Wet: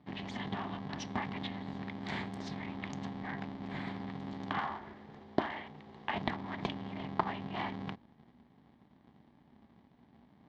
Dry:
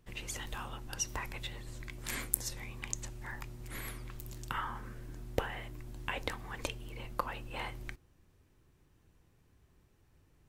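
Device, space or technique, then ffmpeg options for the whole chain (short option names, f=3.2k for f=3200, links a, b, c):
ring modulator pedal into a guitar cabinet: -filter_complex "[0:a]asettb=1/sr,asplit=3[a][b][c];[a]atrim=end=4.584[d];[b]atrim=start=4.58:end=6.14,asetpts=PTS-STARTPTS,afade=t=in:d=0.004:c=qsin,afade=t=out:st=1.556:d=0.004:c=qsin,highpass=f=190:w=0.5412,highpass=f=190:w=1.3066[e];[c]atrim=start=6.136[f];[d][e]acrossfade=d=0.004:c1=hsin:c2=qsin[g];[g][f]acrossfade=d=0.004:c1=qsin:c2=hsin,aeval=exprs='val(0)*sgn(sin(2*PI*150*n/s))':c=same,highpass=80,equalizer=f=100:t=q:w=4:g=-7,equalizer=f=240:t=q:w=4:g=5,equalizer=f=500:t=q:w=4:g=-10,equalizer=f=830:t=q:w=4:g=4,equalizer=f=1.4k:t=q:w=4:g=-9,equalizer=f=2.6k:t=q:w=4:g=-10,lowpass=f=3.5k:w=0.5412,lowpass=f=3.5k:w=1.3066,volume=4.5dB"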